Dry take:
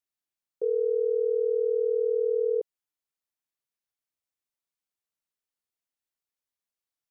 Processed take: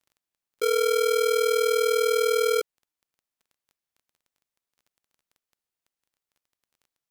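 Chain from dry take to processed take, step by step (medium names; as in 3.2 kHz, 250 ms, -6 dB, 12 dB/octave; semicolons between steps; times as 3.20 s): square wave that keeps the level; crackle 12 per s -48 dBFS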